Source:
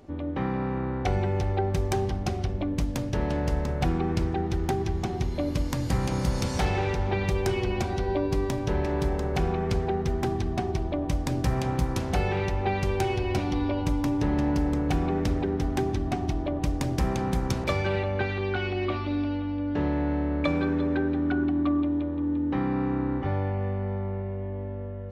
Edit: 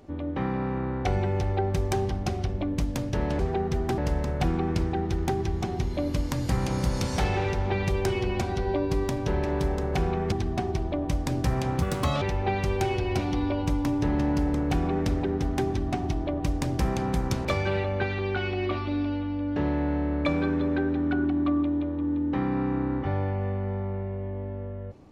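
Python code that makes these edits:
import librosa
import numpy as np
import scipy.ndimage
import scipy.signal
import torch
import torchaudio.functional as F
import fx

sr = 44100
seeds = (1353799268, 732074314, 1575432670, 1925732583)

y = fx.edit(x, sr, fx.move(start_s=9.73, length_s=0.59, to_s=3.39),
    fx.speed_span(start_s=11.82, length_s=0.59, speed=1.48), tone=tone)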